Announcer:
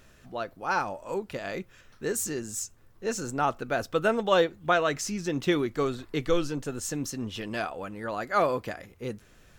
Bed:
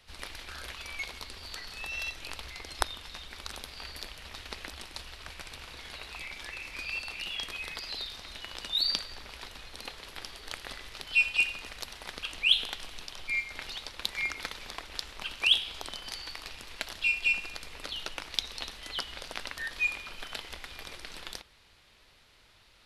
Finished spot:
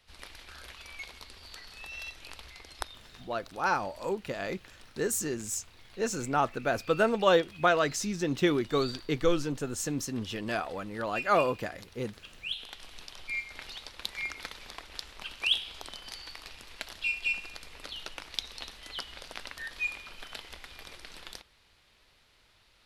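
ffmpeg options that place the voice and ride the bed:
-filter_complex "[0:a]adelay=2950,volume=-0.5dB[a];[1:a]volume=3.5dB,afade=t=out:st=2.45:d=0.97:silence=0.446684,afade=t=in:st=12.52:d=0.49:silence=0.354813[b];[a][b]amix=inputs=2:normalize=0"

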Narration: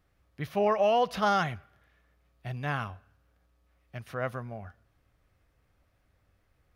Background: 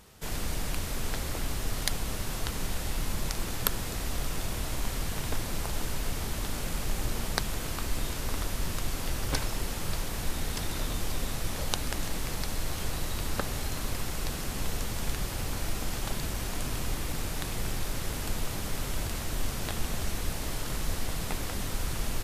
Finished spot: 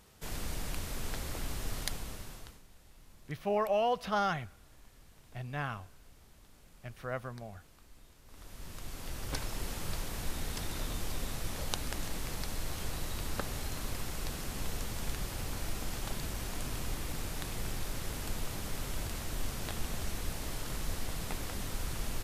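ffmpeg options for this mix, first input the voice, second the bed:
-filter_complex "[0:a]adelay=2900,volume=-5dB[a];[1:a]volume=16dB,afade=t=out:st=1.75:d=0.87:silence=0.0891251,afade=t=in:st=8.25:d=1.44:silence=0.0841395[b];[a][b]amix=inputs=2:normalize=0"

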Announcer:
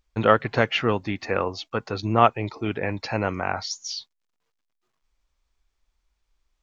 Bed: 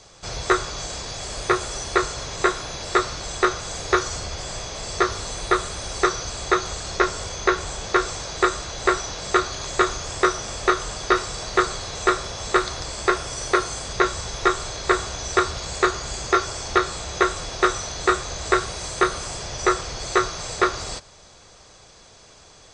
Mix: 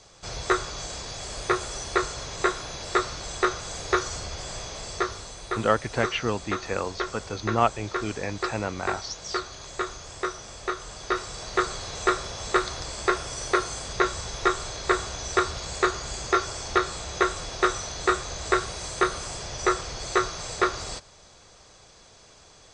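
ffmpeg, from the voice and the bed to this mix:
-filter_complex "[0:a]adelay=5400,volume=-4.5dB[a];[1:a]volume=3dB,afade=t=out:st=4.71:d=0.64:silence=0.473151,afade=t=in:st=10.78:d=1.11:silence=0.446684[b];[a][b]amix=inputs=2:normalize=0"

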